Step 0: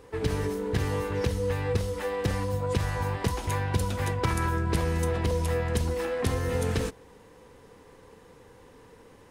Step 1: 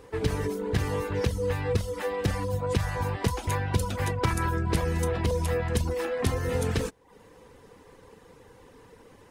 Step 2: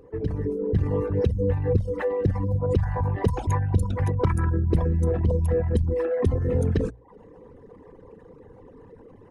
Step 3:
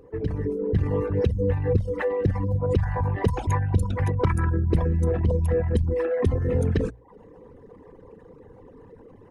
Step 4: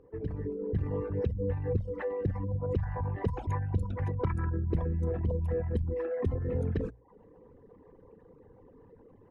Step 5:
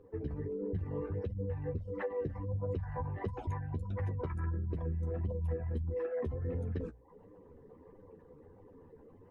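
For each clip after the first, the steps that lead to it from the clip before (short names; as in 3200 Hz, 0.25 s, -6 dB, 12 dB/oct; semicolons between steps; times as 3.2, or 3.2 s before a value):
reverb removal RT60 0.52 s; gain +1.5 dB
formant sharpening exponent 2; notches 60/120 Hz; AGC gain up to 5 dB
dynamic EQ 2200 Hz, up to +4 dB, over -50 dBFS, Q 0.95
LPF 1800 Hz 6 dB/oct; gain -8 dB
compressor, threshold -33 dBFS, peak gain reduction 10.5 dB; flange 1.5 Hz, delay 9.6 ms, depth 4.6 ms, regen +21%; gain +3 dB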